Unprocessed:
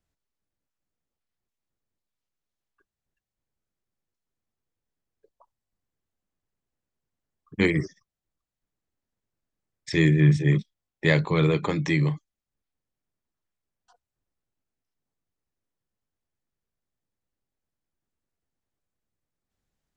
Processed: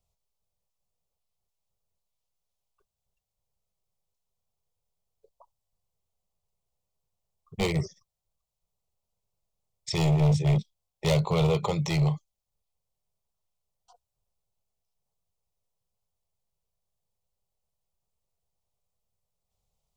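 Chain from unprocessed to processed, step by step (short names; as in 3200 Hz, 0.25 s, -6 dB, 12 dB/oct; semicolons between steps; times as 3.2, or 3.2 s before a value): hard clip -19 dBFS, distortion -10 dB; fixed phaser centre 690 Hz, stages 4; gain +4 dB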